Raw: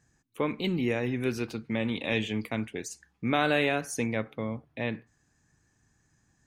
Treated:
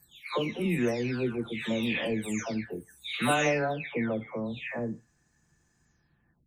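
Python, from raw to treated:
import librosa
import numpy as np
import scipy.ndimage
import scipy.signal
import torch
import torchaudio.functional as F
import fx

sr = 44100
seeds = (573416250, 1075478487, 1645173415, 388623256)

y = fx.spec_delay(x, sr, highs='early', ms=623)
y = y * librosa.db_to_amplitude(1.5)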